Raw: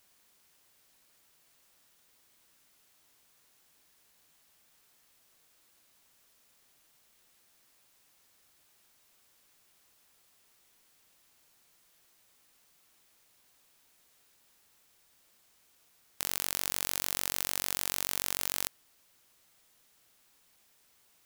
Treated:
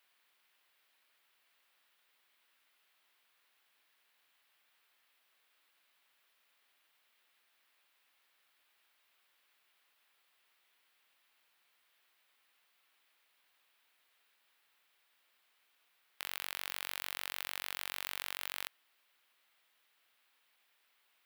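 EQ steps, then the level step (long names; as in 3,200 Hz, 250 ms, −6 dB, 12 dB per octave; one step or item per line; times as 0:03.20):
high-pass filter 120 Hz 6 dB per octave
high-frequency loss of the air 500 metres
first difference
+15.0 dB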